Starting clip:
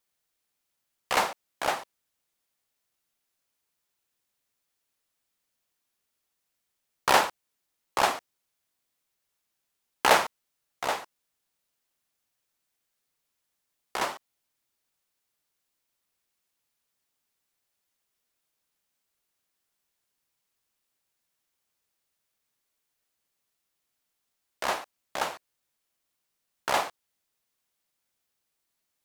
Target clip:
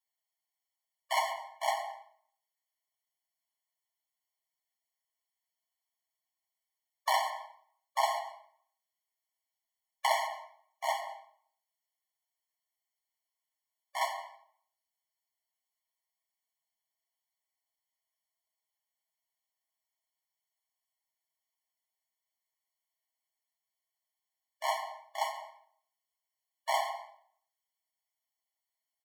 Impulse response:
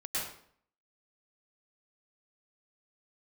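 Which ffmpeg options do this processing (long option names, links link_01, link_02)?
-filter_complex "[0:a]aecho=1:1:7.5:0.6,agate=range=-6dB:threshold=-32dB:ratio=16:detection=peak,acompressor=threshold=-21dB:ratio=6,asplit=2[link_01][link_02];[1:a]atrim=start_sample=2205,highshelf=frequency=3700:gain=-8[link_03];[link_02][link_03]afir=irnorm=-1:irlink=0,volume=-11.5dB[link_04];[link_01][link_04]amix=inputs=2:normalize=0,afftfilt=real='re*eq(mod(floor(b*sr/1024/580),2),1)':imag='im*eq(mod(floor(b*sr/1024/580),2),1)':win_size=1024:overlap=0.75,volume=-2.5dB"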